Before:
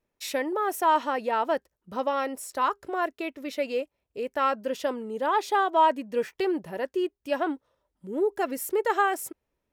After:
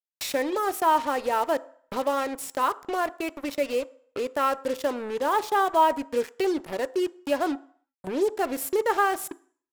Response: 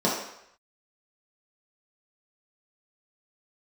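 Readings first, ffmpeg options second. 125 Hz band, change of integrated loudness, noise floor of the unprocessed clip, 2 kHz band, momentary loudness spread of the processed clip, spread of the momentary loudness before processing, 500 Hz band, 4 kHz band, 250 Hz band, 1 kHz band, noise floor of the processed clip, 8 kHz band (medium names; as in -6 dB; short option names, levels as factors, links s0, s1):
no reading, +1.0 dB, -82 dBFS, +0.5 dB, 9 LU, 10 LU, +1.5 dB, +2.0 dB, +1.5 dB, +0.5 dB, under -85 dBFS, +3.0 dB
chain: -filter_complex "[0:a]acrusher=bits=5:mix=0:aa=0.5,acompressor=mode=upward:threshold=0.0447:ratio=2.5,asplit=2[s0][s1];[1:a]atrim=start_sample=2205,asetrate=57330,aresample=44100[s2];[s1][s2]afir=irnorm=-1:irlink=0,volume=0.0398[s3];[s0][s3]amix=inputs=2:normalize=0"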